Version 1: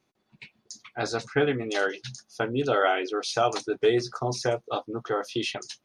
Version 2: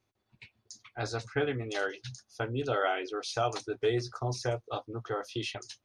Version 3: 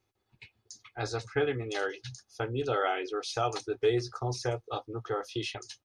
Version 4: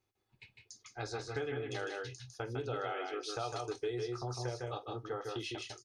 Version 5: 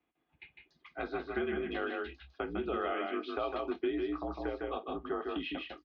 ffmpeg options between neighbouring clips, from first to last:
ffmpeg -i in.wav -af "lowshelf=frequency=130:width_type=q:width=3:gain=6.5,volume=-6dB" out.wav
ffmpeg -i in.wav -af "aecho=1:1:2.4:0.34" out.wav
ffmpeg -i in.wav -af "aecho=1:1:48|154|179:0.106|0.596|0.224,acompressor=threshold=-31dB:ratio=2.5,volume=-5dB" out.wav
ffmpeg -i in.wav -af "highpass=frequency=160:width_type=q:width=0.5412,highpass=frequency=160:width_type=q:width=1.307,lowpass=frequency=3300:width_type=q:width=0.5176,lowpass=frequency=3300:width_type=q:width=0.7071,lowpass=frequency=3300:width_type=q:width=1.932,afreqshift=-61,volume=4dB" out.wav

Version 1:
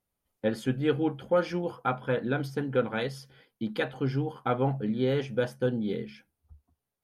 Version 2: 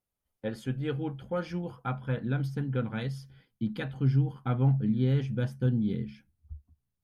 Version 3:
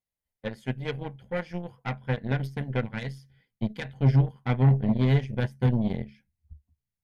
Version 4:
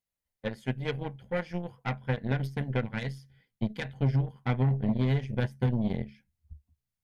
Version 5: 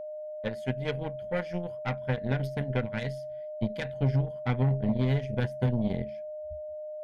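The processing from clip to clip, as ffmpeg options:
ffmpeg -i in.wav -af "asubboost=boost=8:cutoff=180,volume=-6dB" out.wav
ffmpeg -i in.wav -af "aeval=exprs='0.178*(cos(1*acos(clip(val(0)/0.178,-1,1)))-cos(1*PI/2))+0.0158*(cos(4*acos(clip(val(0)/0.178,-1,1)))-cos(4*PI/2))+0.0141*(cos(6*acos(clip(val(0)/0.178,-1,1)))-cos(6*PI/2))+0.0178*(cos(7*acos(clip(val(0)/0.178,-1,1)))-cos(7*PI/2))':channel_layout=same,equalizer=frequency=315:width_type=o:width=0.33:gain=-8,equalizer=frequency=1250:width_type=o:width=0.33:gain=-9,equalizer=frequency=2000:width_type=o:width=0.33:gain=7,volume=4.5dB" out.wav
ffmpeg -i in.wav -af "acompressor=threshold=-22dB:ratio=6" out.wav
ffmpeg -i in.wav -af "aeval=exprs='val(0)+0.0158*sin(2*PI*610*n/s)':channel_layout=same" out.wav

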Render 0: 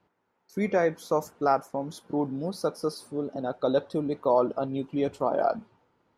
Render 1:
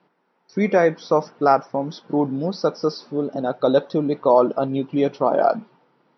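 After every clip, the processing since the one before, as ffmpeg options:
ffmpeg -i in.wav -af "afftfilt=real='re*between(b*sr/4096,120,5900)':imag='im*between(b*sr/4096,120,5900)':win_size=4096:overlap=0.75,volume=7.5dB" out.wav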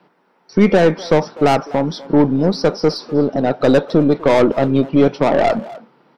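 ffmpeg -i in.wav -filter_complex "[0:a]acrossover=split=360[link_01][link_02];[link_02]asoftclip=type=tanh:threshold=-21dB[link_03];[link_01][link_03]amix=inputs=2:normalize=0,aeval=exprs='0.282*(cos(1*acos(clip(val(0)/0.282,-1,1)))-cos(1*PI/2))+0.0224*(cos(4*acos(clip(val(0)/0.282,-1,1)))-cos(4*PI/2))':channel_layout=same,asplit=2[link_04][link_05];[link_05]adelay=250,highpass=300,lowpass=3400,asoftclip=type=hard:threshold=-20.5dB,volume=-16dB[link_06];[link_04][link_06]amix=inputs=2:normalize=0,volume=8.5dB" out.wav

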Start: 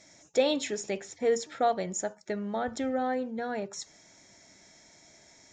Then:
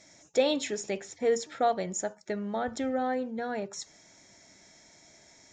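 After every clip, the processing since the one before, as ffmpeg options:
ffmpeg -i in.wav -af anull out.wav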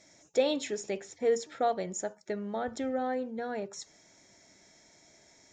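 ffmpeg -i in.wav -af "equalizer=frequency=420:width=1.5:gain=3,volume=-3.5dB" out.wav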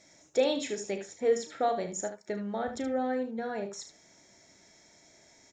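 ffmpeg -i in.wav -af "aecho=1:1:35|75:0.316|0.316" out.wav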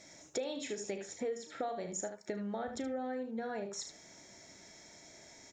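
ffmpeg -i in.wav -af "acompressor=threshold=-40dB:ratio=5,volume=3.5dB" out.wav

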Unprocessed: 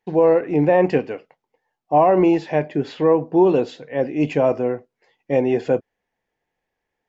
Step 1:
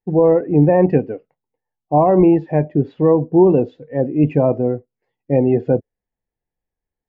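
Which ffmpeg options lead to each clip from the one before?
ffmpeg -i in.wav -af "afftdn=noise_reduction=13:noise_floor=-29,aemphasis=mode=reproduction:type=riaa,volume=-1dB" out.wav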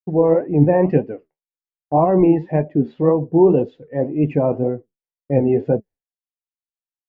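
ffmpeg -i in.wav -af "agate=range=-33dB:threshold=-35dB:ratio=3:detection=peak,flanger=delay=4.5:depth=8.8:regen=62:speed=1.9:shape=sinusoidal,volume=2.5dB" out.wav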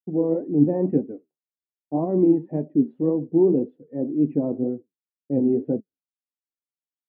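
ffmpeg -i in.wav -af "bandpass=frequency=270:width_type=q:width=2.3:csg=0" out.wav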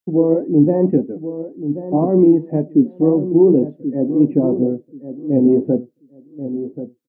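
ffmpeg -i in.wav -filter_complex "[0:a]asplit=2[link_01][link_02];[link_02]adelay=1083,lowpass=frequency=1000:poles=1,volume=-11dB,asplit=2[link_03][link_04];[link_04]adelay=1083,lowpass=frequency=1000:poles=1,volume=0.2,asplit=2[link_05][link_06];[link_06]adelay=1083,lowpass=frequency=1000:poles=1,volume=0.2[link_07];[link_03][link_05][link_07]amix=inputs=3:normalize=0[link_08];[link_01][link_08]amix=inputs=2:normalize=0,alimiter=level_in=10dB:limit=-1dB:release=50:level=0:latency=1,volume=-2.5dB" out.wav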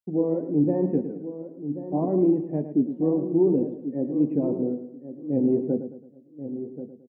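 ffmpeg -i in.wav -af "aecho=1:1:109|218|327|436:0.299|0.119|0.0478|0.0191,volume=-9dB" out.wav

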